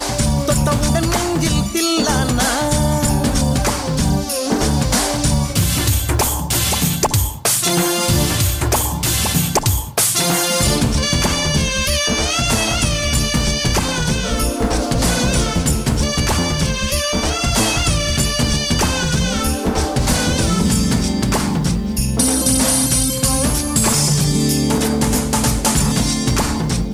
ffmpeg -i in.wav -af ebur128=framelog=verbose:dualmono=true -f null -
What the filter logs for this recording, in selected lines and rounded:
Integrated loudness:
  I:         -13.3 LUFS
  Threshold: -23.3 LUFS
Loudness range:
  LRA:         1.9 LU
  Threshold: -33.3 LUFS
  LRA low:   -14.1 LUFS
  LRA high:  -12.2 LUFS